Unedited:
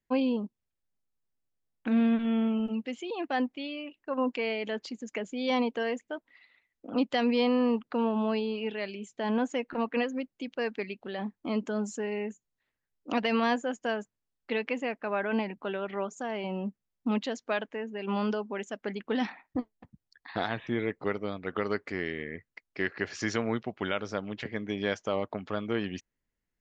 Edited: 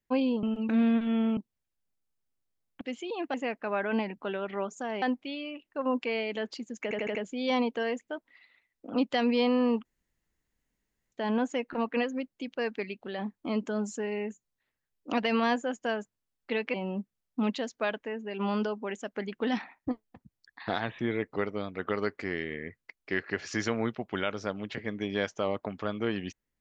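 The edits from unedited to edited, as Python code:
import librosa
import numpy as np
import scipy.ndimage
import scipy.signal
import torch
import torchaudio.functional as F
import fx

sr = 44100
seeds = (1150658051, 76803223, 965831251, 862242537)

y = fx.edit(x, sr, fx.swap(start_s=0.43, length_s=1.44, other_s=2.55, other_length_s=0.26),
    fx.stutter(start_s=5.15, slice_s=0.08, count=5),
    fx.room_tone_fill(start_s=7.85, length_s=1.27),
    fx.move(start_s=14.74, length_s=1.68, to_s=3.34), tone=tone)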